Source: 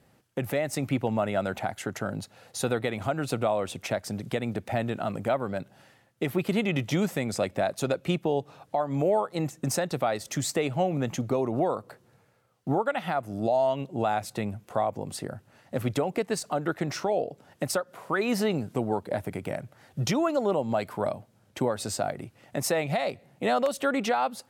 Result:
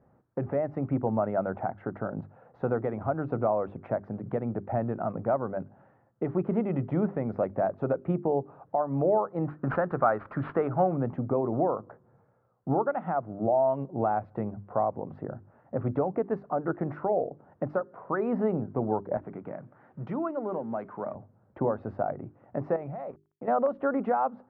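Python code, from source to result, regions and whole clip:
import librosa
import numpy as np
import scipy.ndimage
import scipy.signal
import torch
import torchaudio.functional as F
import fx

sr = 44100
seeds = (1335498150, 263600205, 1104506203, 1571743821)

y = fx.chain(x, sr, fx.resample_bad(factor=4, down='none', up='filtered'),
    fx.peak_eq(hz=1400.0, db=12.0, octaves=0.94), at=(9.47, 10.97))
y = fx.chain(y, sr, fx.law_mismatch(coded='mu'),
    fx.highpass(hz=210.0, slope=12),
    fx.peak_eq(hz=600.0, db=-7.5, octaves=2.1), at=(19.17, 21.15))
y = fx.chain(y, sr, fx.level_steps(step_db=12),
    fx.sample_gate(floor_db=-51.0), at=(22.76, 23.48))
y = scipy.signal.sosfilt(scipy.signal.butter(4, 1300.0, 'lowpass', fs=sr, output='sos'), y)
y = fx.hum_notches(y, sr, base_hz=50, count=8)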